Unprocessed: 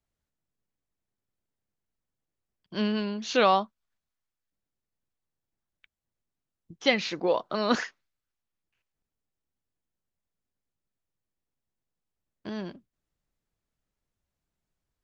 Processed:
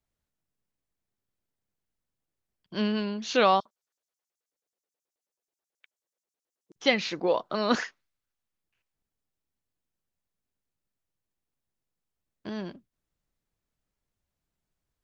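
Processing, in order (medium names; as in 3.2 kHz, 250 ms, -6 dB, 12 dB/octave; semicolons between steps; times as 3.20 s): 3.60–6.76 s: LFO high-pass square 9.3 Hz 460–6100 Hz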